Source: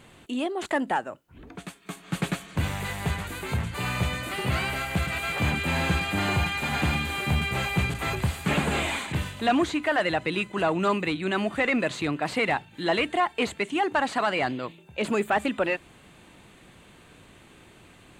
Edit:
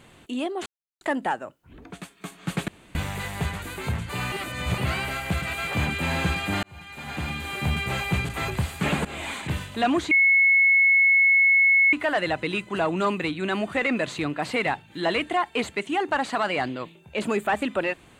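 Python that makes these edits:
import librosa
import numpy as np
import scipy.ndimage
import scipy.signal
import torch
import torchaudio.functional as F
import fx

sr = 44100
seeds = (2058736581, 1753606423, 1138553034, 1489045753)

y = fx.edit(x, sr, fx.insert_silence(at_s=0.66, length_s=0.35),
    fx.room_tone_fill(start_s=2.33, length_s=0.27),
    fx.reverse_span(start_s=3.97, length_s=0.46),
    fx.fade_in_span(start_s=6.28, length_s=1.13),
    fx.fade_in_from(start_s=8.7, length_s=0.36, floor_db=-16.0),
    fx.insert_tone(at_s=9.76, length_s=1.82, hz=2190.0, db=-14.5), tone=tone)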